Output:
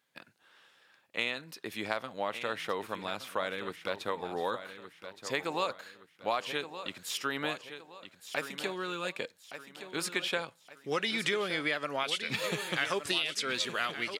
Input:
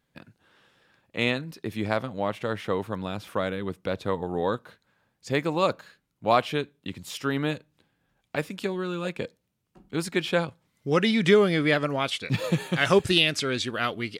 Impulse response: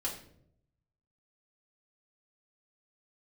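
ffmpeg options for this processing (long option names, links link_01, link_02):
-af "highpass=frequency=1000:poles=1,acompressor=threshold=-29dB:ratio=6,aecho=1:1:1169|2338|3507|4676:0.282|0.107|0.0407|0.0155,volume=1.5dB"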